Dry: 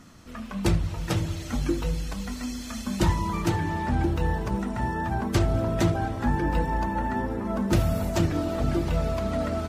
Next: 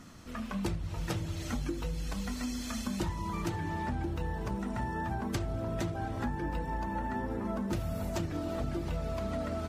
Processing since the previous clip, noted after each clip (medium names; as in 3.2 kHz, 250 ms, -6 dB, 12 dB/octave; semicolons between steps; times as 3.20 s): compression, threshold -30 dBFS, peak gain reduction 12.5 dB; trim -1 dB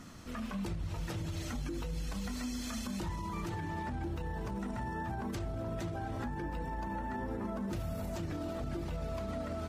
peak limiter -31 dBFS, peak gain reduction 10.5 dB; trim +1 dB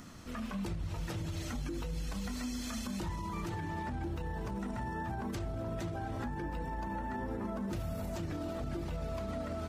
upward compressor, threshold -59 dBFS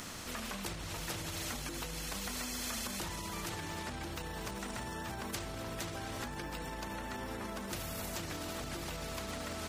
spectrum-flattening compressor 2:1; trim +7.5 dB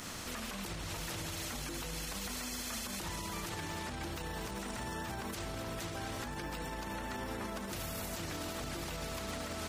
peak limiter -32 dBFS, peak gain reduction 8.5 dB; trim +1.5 dB